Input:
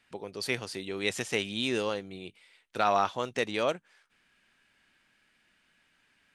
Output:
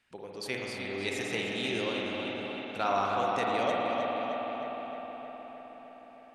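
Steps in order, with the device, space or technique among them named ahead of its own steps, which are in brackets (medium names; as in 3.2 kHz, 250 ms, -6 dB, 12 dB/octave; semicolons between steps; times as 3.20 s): dub delay into a spring reverb (filtered feedback delay 310 ms, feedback 69%, low-pass 4.4 kHz, level -5 dB; spring tank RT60 3.9 s, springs 51 ms, chirp 30 ms, DRR -1.5 dB); trim -5 dB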